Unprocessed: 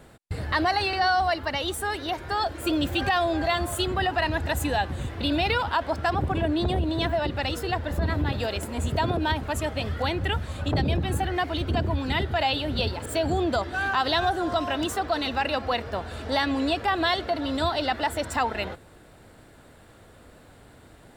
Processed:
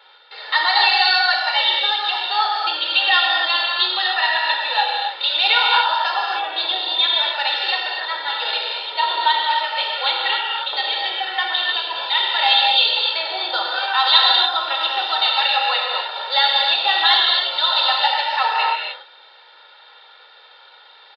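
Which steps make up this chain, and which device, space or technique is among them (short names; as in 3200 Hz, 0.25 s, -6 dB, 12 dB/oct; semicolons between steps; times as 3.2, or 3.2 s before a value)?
comb 2.2 ms, depth 79%; musical greeting card (downsampling 11025 Hz; HPF 720 Hz 24 dB/oct; bell 3600 Hz +11 dB 0.46 oct); non-linear reverb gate 0.32 s flat, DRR -2.5 dB; gain +2 dB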